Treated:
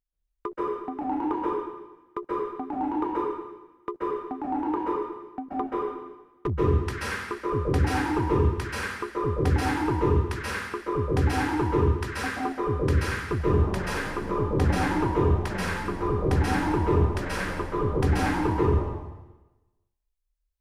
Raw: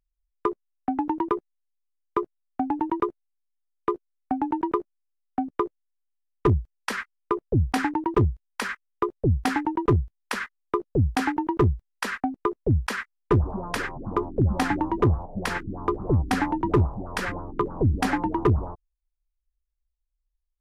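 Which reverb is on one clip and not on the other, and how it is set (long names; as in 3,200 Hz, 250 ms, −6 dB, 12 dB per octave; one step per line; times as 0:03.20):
dense smooth reverb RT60 1.1 s, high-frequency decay 1×, pre-delay 120 ms, DRR −8 dB
level −8.5 dB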